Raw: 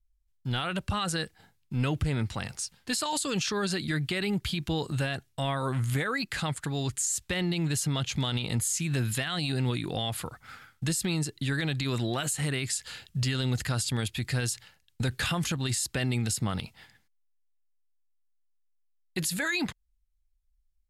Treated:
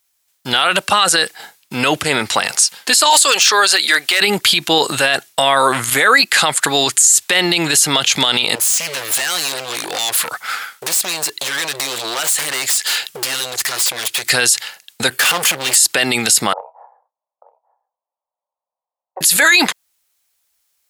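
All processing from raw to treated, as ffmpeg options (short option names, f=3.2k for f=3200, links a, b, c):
-filter_complex "[0:a]asettb=1/sr,asplit=3[a][b][c];[a]atrim=end=3.104[d];[b]atrim=start=3.1:end=4.21,asetpts=PTS-STARTPTS,afade=t=in:d=0.004:c=qsin,afade=t=out:st=1.106:d=0.004:c=qsin,highpass=530,aeval=exprs='0.0708*(abs(mod(val(0)/0.0708+3,4)-2)-1)':c=same[e];[c]atrim=start=4.206[f];[d][e]acrossfade=d=0.004:c1=hsin:c2=qsin[g];[g][f]acrossfade=d=0.004:c1=qsin:c2=hsin,asettb=1/sr,asplit=3[h][i][j];[h]atrim=end=8.554[k];[i]atrim=start=8.55:end=14.3,asetpts=PTS-STARTPTS,afade=t=in:d=0.004:c=qsin,afade=t=out:st=5.746:d=0.004:c=qsin,equalizer=f=230:t=o:w=2.6:g=-3,acompressor=threshold=-35dB:ratio=10:attack=3.2:release=140:knee=1:detection=peak,aeval=exprs='0.0126*(abs(mod(val(0)/0.0126+3,4)-2)-1)':c=same[l];[j]atrim=start=14.296[m];[k][l]acrossfade=d=0.004:c1=hsin:c2=qsin[n];[n][m]acrossfade=d=0.004:c1=qsin:c2=hsin,asettb=1/sr,asplit=3[o][p][q];[o]atrim=end=15.104[r];[p]atrim=start=15.1:end=15.76,asetpts=PTS-STARTPTS,afade=t=in:d=0.004:c=qsin,afade=t=out:st=0.656:d=0.004:c=qsin,equalizer=f=5.9k:w=2.2:g=-9.5,bandreject=f=3.9k:w=6.4,asoftclip=type=hard:threshold=-36.5dB[s];[q]atrim=start=15.756[t];[r][s]acrossfade=d=0.004:c1=hsin:c2=qsin[u];[u][t]acrossfade=d=0.004:c1=qsin:c2=hsin,asettb=1/sr,asplit=3[v][w][x];[v]atrim=end=16.534[y];[w]atrim=start=16.53:end=19.21,asetpts=PTS-STARTPTS,afade=t=in:d=0.004:c=qsin,afade=t=out:st=2.676:d=0.004:c=qsin,asuperpass=centerf=720:order=8:qfactor=1.4,asplit=2[z][aa];[aa]adelay=31,volume=-12dB[ab];[z][ab]amix=inputs=2:normalize=0,atrim=end_sample=118188,aecho=1:1:887:0.0841,atrim=end_sample=118188[ac];[x]atrim=start=19.206[ad];[y][ac]acrossfade=d=0.004:c1=hsin:c2=qsin[ae];[ae][ad]acrossfade=d=0.004:c1=qsin:c2=hsin,highpass=540,highshelf=f=4.8k:g=5.5,alimiter=level_in=25dB:limit=-1dB:release=50:level=0:latency=1,volume=-1dB"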